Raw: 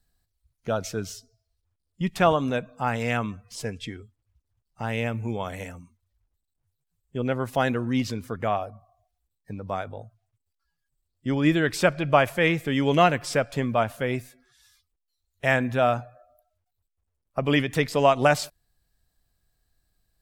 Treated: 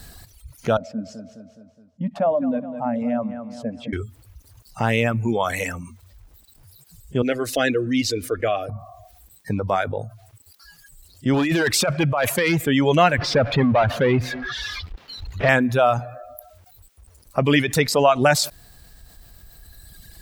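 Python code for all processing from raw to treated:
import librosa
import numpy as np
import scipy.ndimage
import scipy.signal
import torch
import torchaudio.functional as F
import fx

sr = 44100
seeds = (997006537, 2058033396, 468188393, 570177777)

y = fx.chain(x, sr, fx.double_bandpass(hz=380.0, octaves=1.3),
    fx.echo_feedback(ms=209, feedback_pct=32, wet_db=-10), at=(0.77, 3.93))
y = fx.chain(y, sr, fx.high_shelf(hz=11000.0, db=-10.0),
    fx.fixed_phaser(hz=380.0, stages=4),
    fx.comb(ms=6.5, depth=0.35), at=(7.22, 8.69))
y = fx.chain(y, sr, fx.low_shelf(hz=190.0, db=-3.5),
    fx.over_compress(threshold_db=-25.0, ratio=-1.0),
    fx.overload_stage(gain_db=22.0), at=(11.34, 12.58))
y = fx.chain(y, sr, fx.clip_hard(threshold_db=-15.0),
    fx.power_curve(exponent=0.5),
    fx.air_absorb(metres=280.0), at=(13.18, 15.49))
y = fx.highpass(y, sr, hz=40.0, slope=6)
y = fx.dereverb_blind(y, sr, rt60_s=1.7)
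y = fx.env_flatten(y, sr, amount_pct=50)
y = y * librosa.db_to_amplitude(2.5)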